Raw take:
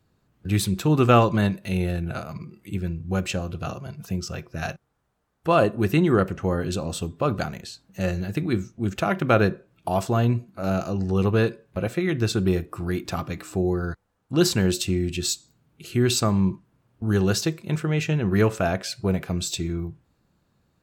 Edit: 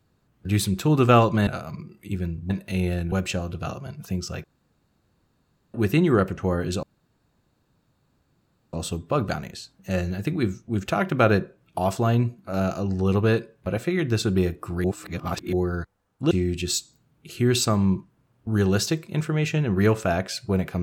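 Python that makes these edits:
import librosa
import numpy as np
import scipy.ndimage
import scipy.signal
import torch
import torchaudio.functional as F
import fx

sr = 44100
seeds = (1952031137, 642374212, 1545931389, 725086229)

y = fx.edit(x, sr, fx.move(start_s=1.47, length_s=0.62, to_s=3.12),
    fx.room_tone_fill(start_s=4.44, length_s=1.3),
    fx.insert_room_tone(at_s=6.83, length_s=1.9),
    fx.reverse_span(start_s=12.94, length_s=0.69),
    fx.cut(start_s=14.41, length_s=0.45), tone=tone)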